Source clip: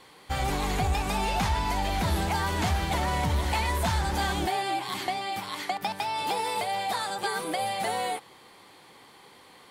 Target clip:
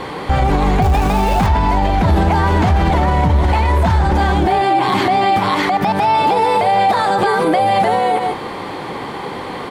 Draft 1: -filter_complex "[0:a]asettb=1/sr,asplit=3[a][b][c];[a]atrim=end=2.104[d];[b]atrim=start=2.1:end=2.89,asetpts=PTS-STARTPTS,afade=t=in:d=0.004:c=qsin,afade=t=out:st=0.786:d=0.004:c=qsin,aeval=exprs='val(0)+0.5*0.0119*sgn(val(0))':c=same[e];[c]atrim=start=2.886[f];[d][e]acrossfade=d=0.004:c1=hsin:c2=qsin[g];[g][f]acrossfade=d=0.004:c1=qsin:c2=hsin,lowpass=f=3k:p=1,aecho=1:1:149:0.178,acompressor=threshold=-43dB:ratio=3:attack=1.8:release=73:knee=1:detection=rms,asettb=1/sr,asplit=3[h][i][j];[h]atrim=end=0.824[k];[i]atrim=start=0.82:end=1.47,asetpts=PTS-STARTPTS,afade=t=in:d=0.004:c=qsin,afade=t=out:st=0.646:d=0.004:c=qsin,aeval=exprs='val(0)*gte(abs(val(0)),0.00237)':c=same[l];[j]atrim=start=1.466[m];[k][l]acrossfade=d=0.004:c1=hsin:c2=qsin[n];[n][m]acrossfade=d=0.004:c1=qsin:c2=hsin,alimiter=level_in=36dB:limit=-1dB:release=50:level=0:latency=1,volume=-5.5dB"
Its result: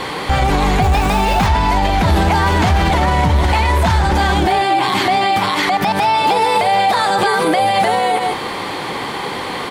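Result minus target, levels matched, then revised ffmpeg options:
4000 Hz band +6.0 dB
-filter_complex "[0:a]asettb=1/sr,asplit=3[a][b][c];[a]atrim=end=2.104[d];[b]atrim=start=2.1:end=2.89,asetpts=PTS-STARTPTS,afade=t=in:d=0.004:c=qsin,afade=t=out:st=0.786:d=0.004:c=qsin,aeval=exprs='val(0)+0.5*0.0119*sgn(val(0))':c=same[e];[c]atrim=start=2.886[f];[d][e]acrossfade=d=0.004:c1=hsin:c2=qsin[g];[g][f]acrossfade=d=0.004:c1=qsin:c2=hsin,lowpass=f=930:p=1,aecho=1:1:149:0.178,acompressor=threshold=-43dB:ratio=3:attack=1.8:release=73:knee=1:detection=rms,asettb=1/sr,asplit=3[h][i][j];[h]atrim=end=0.824[k];[i]atrim=start=0.82:end=1.47,asetpts=PTS-STARTPTS,afade=t=in:d=0.004:c=qsin,afade=t=out:st=0.646:d=0.004:c=qsin,aeval=exprs='val(0)*gte(abs(val(0)),0.00237)':c=same[l];[j]atrim=start=1.466[m];[k][l]acrossfade=d=0.004:c1=hsin:c2=qsin[n];[n][m]acrossfade=d=0.004:c1=qsin:c2=hsin,alimiter=level_in=36dB:limit=-1dB:release=50:level=0:latency=1,volume=-5.5dB"

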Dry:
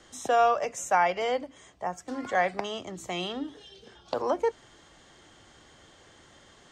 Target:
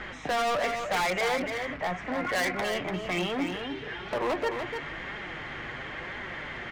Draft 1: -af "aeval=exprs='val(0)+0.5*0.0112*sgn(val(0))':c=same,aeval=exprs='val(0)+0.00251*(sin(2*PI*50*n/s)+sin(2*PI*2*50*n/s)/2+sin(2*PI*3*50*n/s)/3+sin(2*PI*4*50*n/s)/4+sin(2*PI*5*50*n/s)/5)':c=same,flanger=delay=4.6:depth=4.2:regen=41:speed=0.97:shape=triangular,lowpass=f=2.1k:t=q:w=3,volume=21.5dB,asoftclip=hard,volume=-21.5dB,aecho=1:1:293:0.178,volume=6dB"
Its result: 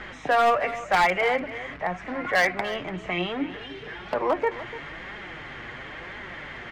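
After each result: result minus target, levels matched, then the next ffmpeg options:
echo-to-direct -8.5 dB; overloaded stage: distortion -8 dB
-af "aeval=exprs='val(0)+0.5*0.0112*sgn(val(0))':c=same,aeval=exprs='val(0)+0.00251*(sin(2*PI*50*n/s)+sin(2*PI*2*50*n/s)/2+sin(2*PI*3*50*n/s)/3+sin(2*PI*4*50*n/s)/4+sin(2*PI*5*50*n/s)/5)':c=same,flanger=delay=4.6:depth=4.2:regen=41:speed=0.97:shape=triangular,lowpass=f=2.1k:t=q:w=3,volume=21.5dB,asoftclip=hard,volume=-21.5dB,aecho=1:1:293:0.473,volume=6dB"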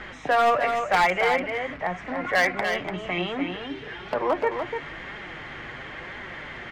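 overloaded stage: distortion -8 dB
-af "aeval=exprs='val(0)+0.5*0.0112*sgn(val(0))':c=same,aeval=exprs='val(0)+0.00251*(sin(2*PI*50*n/s)+sin(2*PI*2*50*n/s)/2+sin(2*PI*3*50*n/s)/3+sin(2*PI*4*50*n/s)/4+sin(2*PI*5*50*n/s)/5)':c=same,flanger=delay=4.6:depth=4.2:regen=41:speed=0.97:shape=triangular,lowpass=f=2.1k:t=q:w=3,volume=31.5dB,asoftclip=hard,volume=-31.5dB,aecho=1:1:293:0.473,volume=6dB"

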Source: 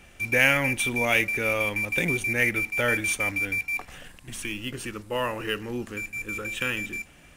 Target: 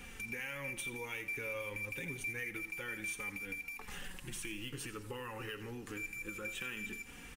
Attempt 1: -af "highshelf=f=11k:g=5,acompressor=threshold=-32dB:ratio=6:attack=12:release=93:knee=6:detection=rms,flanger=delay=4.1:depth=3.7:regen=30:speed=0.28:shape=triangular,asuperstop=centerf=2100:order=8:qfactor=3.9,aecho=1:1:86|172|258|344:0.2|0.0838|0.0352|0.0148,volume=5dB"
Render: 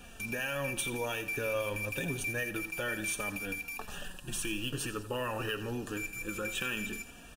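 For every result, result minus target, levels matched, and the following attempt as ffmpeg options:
compressor: peak gain reduction -9 dB; 500 Hz band +3.5 dB
-af "highshelf=f=11k:g=5,acompressor=threshold=-43dB:ratio=6:attack=12:release=93:knee=6:detection=rms,flanger=delay=4.1:depth=3.7:regen=30:speed=0.28:shape=triangular,asuperstop=centerf=2100:order=8:qfactor=3.9,aecho=1:1:86|172|258|344:0.2|0.0838|0.0352|0.0148,volume=5dB"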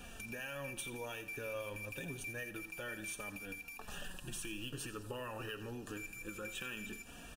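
500 Hz band +3.5 dB
-af "highshelf=f=11k:g=5,acompressor=threshold=-43dB:ratio=6:attack=12:release=93:knee=6:detection=rms,flanger=delay=4.1:depth=3.7:regen=30:speed=0.28:shape=triangular,asuperstop=centerf=640:order=8:qfactor=3.9,aecho=1:1:86|172|258|344:0.2|0.0838|0.0352|0.0148,volume=5dB"

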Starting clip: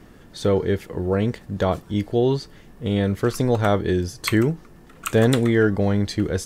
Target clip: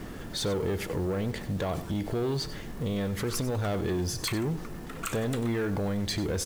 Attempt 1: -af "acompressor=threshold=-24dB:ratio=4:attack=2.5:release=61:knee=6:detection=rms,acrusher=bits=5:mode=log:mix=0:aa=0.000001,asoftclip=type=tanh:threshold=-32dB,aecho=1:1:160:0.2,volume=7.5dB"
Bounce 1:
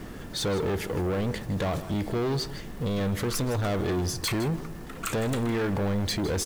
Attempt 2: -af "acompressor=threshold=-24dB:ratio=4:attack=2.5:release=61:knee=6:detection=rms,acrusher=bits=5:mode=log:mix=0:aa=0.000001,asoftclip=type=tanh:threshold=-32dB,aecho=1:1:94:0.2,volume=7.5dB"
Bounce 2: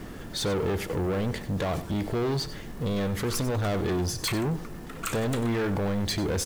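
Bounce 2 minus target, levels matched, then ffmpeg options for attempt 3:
compressor: peak gain reduction -6 dB
-af "acompressor=threshold=-32dB:ratio=4:attack=2.5:release=61:knee=6:detection=rms,acrusher=bits=5:mode=log:mix=0:aa=0.000001,asoftclip=type=tanh:threshold=-32dB,aecho=1:1:94:0.2,volume=7.5dB"

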